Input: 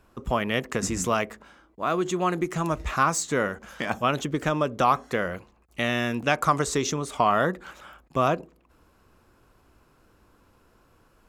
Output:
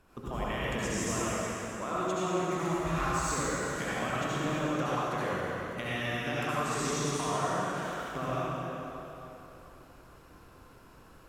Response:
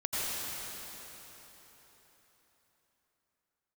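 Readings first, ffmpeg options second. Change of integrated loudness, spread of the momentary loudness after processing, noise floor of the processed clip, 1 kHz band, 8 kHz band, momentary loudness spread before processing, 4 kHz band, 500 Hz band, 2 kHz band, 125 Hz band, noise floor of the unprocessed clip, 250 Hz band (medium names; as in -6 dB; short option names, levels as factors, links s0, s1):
-6.5 dB, 9 LU, -55 dBFS, -7.0 dB, -4.0 dB, 9 LU, -5.0 dB, -6.0 dB, -5.5 dB, -3.5 dB, -62 dBFS, -5.0 dB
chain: -filter_complex "[0:a]bandreject=f=54.1:t=h:w=4,bandreject=f=108.2:t=h:w=4,acompressor=threshold=0.02:ratio=5[s0];[1:a]atrim=start_sample=2205,asetrate=57330,aresample=44100[s1];[s0][s1]afir=irnorm=-1:irlink=0"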